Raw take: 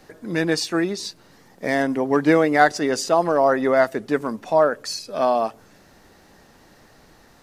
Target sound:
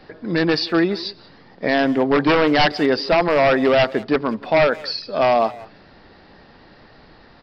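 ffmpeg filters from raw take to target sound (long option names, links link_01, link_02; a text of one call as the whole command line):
ffmpeg -i in.wav -filter_complex "[0:a]aresample=11025,aeval=exprs='0.211*(abs(mod(val(0)/0.211+3,4)-2)-1)':channel_layout=same,aresample=44100,asplit=2[link_01][link_02];[link_02]adelay=180,highpass=300,lowpass=3400,asoftclip=type=hard:threshold=-21.5dB,volume=-16dB[link_03];[link_01][link_03]amix=inputs=2:normalize=0,volume=4.5dB" out.wav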